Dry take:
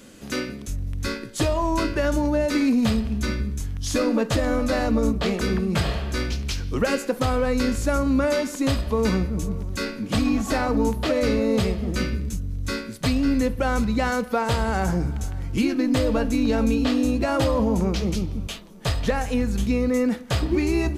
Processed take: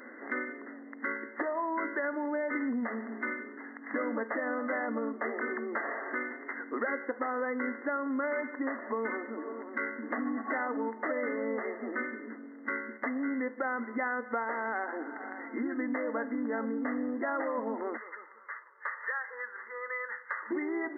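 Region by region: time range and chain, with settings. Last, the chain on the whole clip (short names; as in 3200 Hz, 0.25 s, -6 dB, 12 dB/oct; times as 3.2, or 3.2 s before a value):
17.97–20.51 Chebyshev band-stop 100–680 Hz + fixed phaser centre 2600 Hz, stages 6
whole clip: FFT band-pass 220–2100 Hz; tilt shelf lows -9 dB, about 1300 Hz; compressor 2.5:1, threshold -42 dBFS; gain +6.5 dB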